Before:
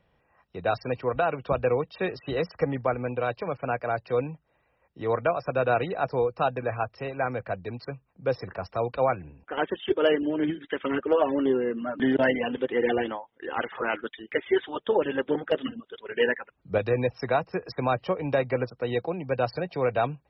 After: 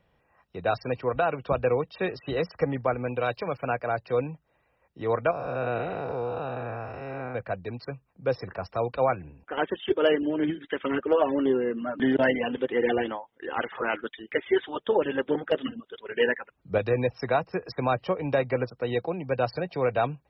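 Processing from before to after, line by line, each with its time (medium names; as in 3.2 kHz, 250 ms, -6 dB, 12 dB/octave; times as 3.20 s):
3.07–3.73 s: treble shelf 4.2 kHz +12 dB
5.31–7.35 s: spectral blur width 287 ms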